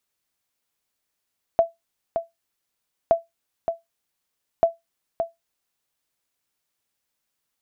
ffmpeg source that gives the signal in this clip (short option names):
-f lavfi -i "aevalsrc='0.398*(sin(2*PI*669*mod(t,1.52))*exp(-6.91*mod(t,1.52)/0.17)+0.422*sin(2*PI*669*max(mod(t,1.52)-0.57,0))*exp(-6.91*max(mod(t,1.52)-0.57,0)/0.17))':d=4.56:s=44100"